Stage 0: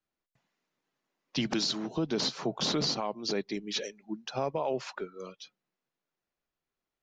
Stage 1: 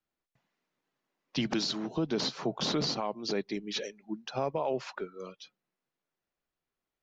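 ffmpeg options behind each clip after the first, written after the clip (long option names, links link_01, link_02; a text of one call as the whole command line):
ffmpeg -i in.wav -af "highshelf=frequency=7800:gain=-10" out.wav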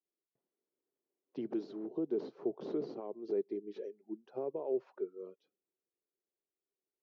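ffmpeg -i in.wav -af "bandpass=frequency=390:width_type=q:width=4.1:csg=0,volume=1.5dB" out.wav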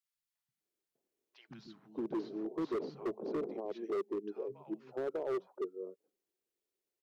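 ffmpeg -i in.wav -filter_complex "[0:a]acrossover=split=170|1100[link_01][link_02][link_03];[link_01]adelay=130[link_04];[link_02]adelay=600[link_05];[link_04][link_05][link_03]amix=inputs=3:normalize=0,asoftclip=type=hard:threshold=-35dB,volume=3.5dB" out.wav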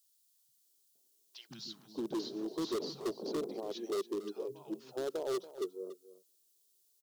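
ffmpeg -i in.wav -af "aexciter=amount=8.3:drive=2.8:freq=3200,aecho=1:1:283:0.178" out.wav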